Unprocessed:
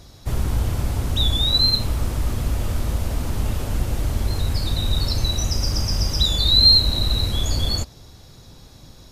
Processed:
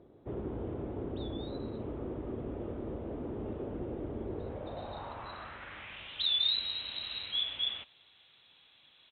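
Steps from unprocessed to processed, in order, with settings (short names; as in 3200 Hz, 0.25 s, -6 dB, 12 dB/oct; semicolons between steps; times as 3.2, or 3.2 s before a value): downsampling 8000 Hz; band-pass sweep 380 Hz -> 3000 Hz, 4.34–6.12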